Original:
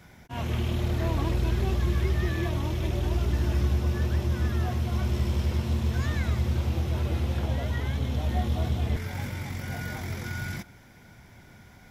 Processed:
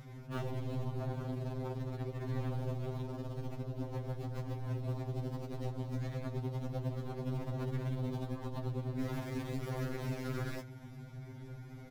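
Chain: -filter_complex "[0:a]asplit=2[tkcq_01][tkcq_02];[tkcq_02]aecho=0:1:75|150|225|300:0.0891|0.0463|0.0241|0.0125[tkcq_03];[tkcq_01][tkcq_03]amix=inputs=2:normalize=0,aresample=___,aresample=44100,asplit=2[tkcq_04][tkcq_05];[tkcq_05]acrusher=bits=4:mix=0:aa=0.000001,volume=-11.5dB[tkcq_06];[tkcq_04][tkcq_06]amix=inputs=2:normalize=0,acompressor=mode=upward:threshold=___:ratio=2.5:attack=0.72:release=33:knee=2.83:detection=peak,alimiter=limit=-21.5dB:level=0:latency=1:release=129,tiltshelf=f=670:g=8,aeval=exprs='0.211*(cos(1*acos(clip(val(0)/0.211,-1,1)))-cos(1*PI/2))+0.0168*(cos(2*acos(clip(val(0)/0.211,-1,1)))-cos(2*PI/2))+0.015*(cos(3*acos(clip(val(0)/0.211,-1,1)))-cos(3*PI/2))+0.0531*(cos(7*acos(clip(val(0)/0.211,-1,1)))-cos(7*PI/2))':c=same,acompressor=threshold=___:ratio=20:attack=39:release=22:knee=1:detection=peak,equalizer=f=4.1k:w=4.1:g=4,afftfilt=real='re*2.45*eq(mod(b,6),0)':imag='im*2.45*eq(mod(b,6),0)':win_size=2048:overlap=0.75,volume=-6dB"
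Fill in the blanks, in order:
32000, -32dB, -34dB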